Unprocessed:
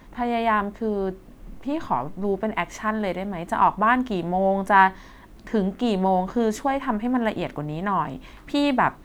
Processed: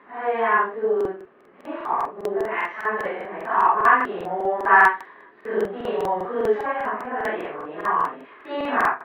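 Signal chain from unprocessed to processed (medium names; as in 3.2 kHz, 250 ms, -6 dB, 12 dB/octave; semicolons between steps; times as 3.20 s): phase randomisation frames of 200 ms; cabinet simulation 410–2700 Hz, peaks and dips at 420 Hz +10 dB, 1.2 kHz +8 dB, 1.7 kHz +7 dB; crackling interface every 0.20 s, samples 2048, repeat, from 0.96 s; trim -1.5 dB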